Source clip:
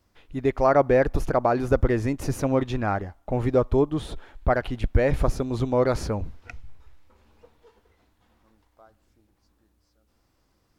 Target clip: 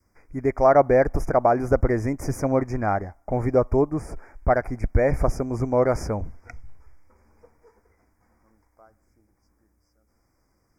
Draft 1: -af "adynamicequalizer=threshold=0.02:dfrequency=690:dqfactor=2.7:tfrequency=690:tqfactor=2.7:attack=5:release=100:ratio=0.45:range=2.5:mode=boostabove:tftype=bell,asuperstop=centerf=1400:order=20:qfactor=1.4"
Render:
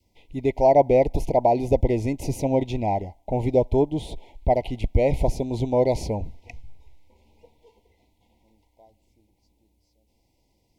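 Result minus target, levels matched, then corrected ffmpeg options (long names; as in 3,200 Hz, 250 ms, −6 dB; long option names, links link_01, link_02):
4,000 Hz band +8.0 dB
-af "adynamicequalizer=threshold=0.02:dfrequency=690:dqfactor=2.7:tfrequency=690:tqfactor=2.7:attack=5:release=100:ratio=0.45:range=2.5:mode=boostabove:tftype=bell,asuperstop=centerf=3400:order=20:qfactor=1.4"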